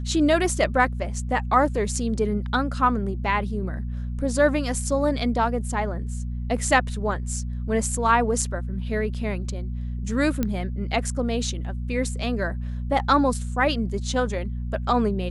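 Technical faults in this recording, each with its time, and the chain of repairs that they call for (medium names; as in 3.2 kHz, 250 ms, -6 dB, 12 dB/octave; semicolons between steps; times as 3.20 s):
hum 60 Hz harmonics 4 -29 dBFS
10.43 s: pop -11 dBFS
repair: de-click; de-hum 60 Hz, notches 4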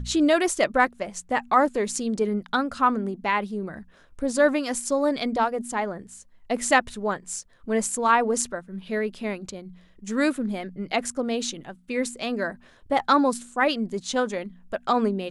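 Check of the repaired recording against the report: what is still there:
nothing left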